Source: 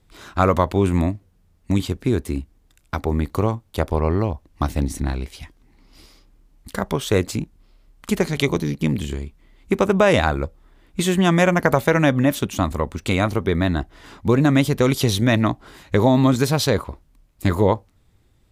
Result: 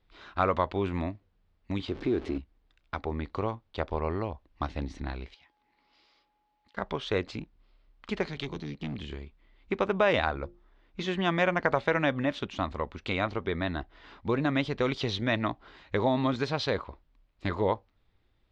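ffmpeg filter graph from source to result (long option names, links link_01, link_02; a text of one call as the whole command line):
ffmpeg -i in.wav -filter_complex "[0:a]asettb=1/sr,asplit=3[link_01][link_02][link_03];[link_01]atrim=end=1.884[link_04];[link_02]atrim=start=1.88:end=2.38,asetpts=PTS-STARTPTS,afade=type=in:duration=0.004:curve=qsin,afade=type=out:start_time=0.496:duration=0.004:curve=qsin,aeval=exprs='val(0)+0.5*0.0335*sgn(val(0))':channel_layout=same,equalizer=frequency=330:width=1.3:gain=10.5,acompressor=threshold=-20dB:ratio=1.5:attack=3.2:release=140:knee=1:detection=peak[link_05];[link_03]atrim=start=2.376[link_06];[link_04][link_05]acrossfade=duration=0.004:curve1=hsin:curve2=qsin[link_07];[link_07][link_06]acrossfade=duration=0.004:curve1=qsin:curve2=hsin,asettb=1/sr,asplit=3[link_08][link_09][link_10];[link_08]atrim=end=5.344[link_11];[link_09]atrim=start=5.34:end=6.77,asetpts=PTS-STARTPTS,afade=type=in:duration=0.004:curve=qsin,afade=type=out:start_time=1.426:duration=0.004:curve=qsin,highpass=frequency=490:poles=1,acompressor=threshold=-53dB:ratio=2.5:attack=3.2:release=140:knee=1:detection=peak,aeval=exprs='val(0)+0.000562*sin(2*PI*840*n/s)':channel_layout=same[link_12];[link_10]atrim=start=6.766[link_13];[link_11][link_12]acrossfade=duration=0.004:curve1=hsin:curve2=qsin[link_14];[link_14][link_13]acrossfade=duration=0.004:curve1=qsin:curve2=hsin,asettb=1/sr,asplit=3[link_15][link_16][link_17];[link_15]atrim=end=8.274[link_18];[link_16]atrim=start=8.27:end=9.1,asetpts=PTS-STARTPTS,afade=type=in:duration=0.004:curve=qsin,afade=type=out:start_time=0.826:duration=0.004:curve=qsin,acrossover=split=300|3000[link_19][link_20][link_21];[link_20]acompressor=threshold=-33dB:ratio=3:attack=3.2:release=140:knee=2.83:detection=peak[link_22];[link_19][link_22][link_21]amix=inputs=3:normalize=0,volume=17dB,asoftclip=hard,volume=-17dB[link_23];[link_17]atrim=start=9.096[link_24];[link_18][link_23]acrossfade=duration=0.004:curve1=hsin:curve2=qsin[link_25];[link_25][link_24]acrossfade=duration=0.004:curve1=qsin:curve2=hsin,asettb=1/sr,asplit=3[link_26][link_27][link_28];[link_26]atrim=end=10.254[link_29];[link_27]atrim=start=10.25:end=11.08,asetpts=PTS-STARTPTS,afade=type=in:duration=0.004:curve=qsin,afade=type=out:start_time=0.826:duration=0.004:curve=qsin,lowpass=frequency=6200:width_type=q:width=3.8,highshelf=frequency=3700:gain=-12,bandreject=frequency=50:width_type=h:width=6,bandreject=frequency=100:width_type=h:width=6,bandreject=frequency=150:width_type=h:width=6,bandreject=frequency=200:width_type=h:width=6,bandreject=frequency=250:width_type=h:width=6,bandreject=frequency=300:width_type=h:width=6,bandreject=frequency=350:width_type=h:width=6[link_30];[link_28]atrim=start=11.076[link_31];[link_29][link_30]acrossfade=duration=0.004:curve1=hsin:curve2=qsin[link_32];[link_32][link_31]acrossfade=duration=0.004:curve1=qsin:curve2=hsin,lowpass=frequency=4300:width=0.5412,lowpass=frequency=4300:width=1.3066,equalizer=frequency=130:width=0.41:gain=-8,volume=-6.5dB" out.wav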